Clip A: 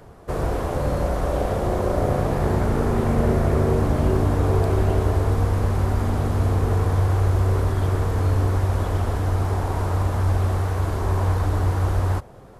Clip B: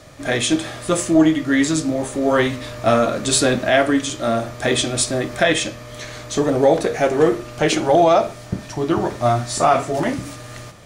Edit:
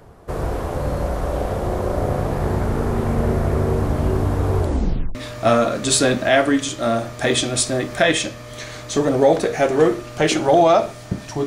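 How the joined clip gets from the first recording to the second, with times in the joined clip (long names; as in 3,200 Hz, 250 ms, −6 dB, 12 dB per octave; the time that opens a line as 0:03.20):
clip A
0:04.59: tape stop 0.56 s
0:05.15: continue with clip B from 0:02.56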